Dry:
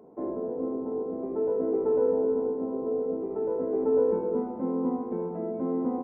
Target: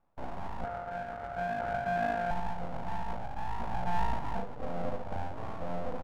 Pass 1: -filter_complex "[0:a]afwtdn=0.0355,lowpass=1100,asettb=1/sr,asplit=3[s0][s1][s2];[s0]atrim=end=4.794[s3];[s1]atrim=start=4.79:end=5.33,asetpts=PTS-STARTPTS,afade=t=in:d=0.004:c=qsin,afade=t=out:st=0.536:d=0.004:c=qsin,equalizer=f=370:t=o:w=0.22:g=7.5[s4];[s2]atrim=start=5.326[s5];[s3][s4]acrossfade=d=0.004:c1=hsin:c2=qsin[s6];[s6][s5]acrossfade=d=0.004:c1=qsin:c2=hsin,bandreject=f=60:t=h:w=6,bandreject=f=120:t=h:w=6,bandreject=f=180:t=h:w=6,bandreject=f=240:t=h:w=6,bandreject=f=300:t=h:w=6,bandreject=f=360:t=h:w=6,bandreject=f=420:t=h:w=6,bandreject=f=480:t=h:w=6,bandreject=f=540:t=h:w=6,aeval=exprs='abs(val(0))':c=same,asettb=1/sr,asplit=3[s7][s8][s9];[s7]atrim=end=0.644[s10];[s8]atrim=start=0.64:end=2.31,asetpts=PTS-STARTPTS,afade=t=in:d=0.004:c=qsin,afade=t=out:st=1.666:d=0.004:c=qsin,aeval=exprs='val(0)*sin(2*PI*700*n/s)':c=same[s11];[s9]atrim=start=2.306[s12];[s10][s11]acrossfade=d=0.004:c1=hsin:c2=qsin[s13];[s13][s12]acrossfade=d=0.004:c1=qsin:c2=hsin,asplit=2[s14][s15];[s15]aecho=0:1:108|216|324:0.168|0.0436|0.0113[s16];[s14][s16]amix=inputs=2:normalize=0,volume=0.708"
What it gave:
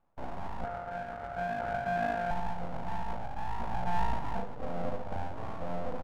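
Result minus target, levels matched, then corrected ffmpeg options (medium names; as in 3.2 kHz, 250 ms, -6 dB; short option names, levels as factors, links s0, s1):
echo-to-direct +6 dB
-filter_complex "[0:a]afwtdn=0.0355,lowpass=1100,asettb=1/sr,asplit=3[s0][s1][s2];[s0]atrim=end=4.794[s3];[s1]atrim=start=4.79:end=5.33,asetpts=PTS-STARTPTS,afade=t=in:d=0.004:c=qsin,afade=t=out:st=0.536:d=0.004:c=qsin,equalizer=f=370:t=o:w=0.22:g=7.5[s4];[s2]atrim=start=5.326[s5];[s3][s4]acrossfade=d=0.004:c1=hsin:c2=qsin[s6];[s6][s5]acrossfade=d=0.004:c1=qsin:c2=hsin,bandreject=f=60:t=h:w=6,bandreject=f=120:t=h:w=6,bandreject=f=180:t=h:w=6,bandreject=f=240:t=h:w=6,bandreject=f=300:t=h:w=6,bandreject=f=360:t=h:w=6,bandreject=f=420:t=h:w=6,bandreject=f=480:t=h:w=6,bandreject=f=540:t=h:w=6,aeval=exprs='abs(val(0))':c=same,asettb=1/sr,asplit=3[s7][s8][s9];[s7]atrim=end=0.644[s10];[s8]atrim=start=0.64:end=2.31,asetpts=PTS-STARTPTS,afade=t=in:d=0.004:c=qsin,afade=t=out:st=1.666:d=0.004:c=qsin,aeval=exprs='val(0)*sin(2*PI*700*n/s)':c=same[s11];[s9]atrim=start=2.306[s12];[s10][s11]acrossfade=d=0.004:c1=hsin:c2=qsin[s13];[s13][s12]acrossfade=d=0.004:c1=qsin:c2=hsin,asplit=2[s14][s15];[s15]aecho=0:1:108|216:0.0841|0.0219[s16];[s14][s16]amix=inputs=2:normalize=0,volume=0.708"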